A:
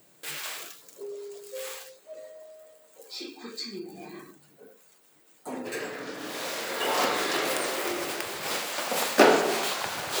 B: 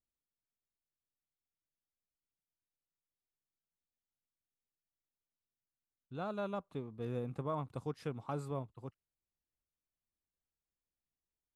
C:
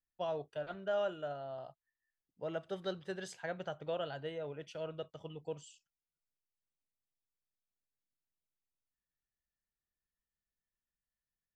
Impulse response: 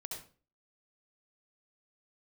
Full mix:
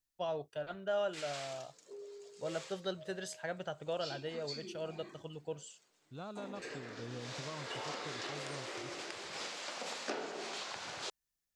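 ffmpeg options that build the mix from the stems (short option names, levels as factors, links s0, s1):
-filter_complex "[0:a]adelay=900,volume=0.299[s0];[1:a]bass=f=250:g=2,treble=f=4000:g=10,volume=0.562[s1];[2:a]volume=1[s2];[s0][s1]amix=inputs=2:normalize=0,lowpass=f=6600:w=0.5412,lowpass=f=6600:w=1.3066,acompressor=threshold=0.00891:ratio=3,volume=1[s3];[s2][s3]amix=inputs=2:normalize=0,highshelf=f=4800:g=7.5"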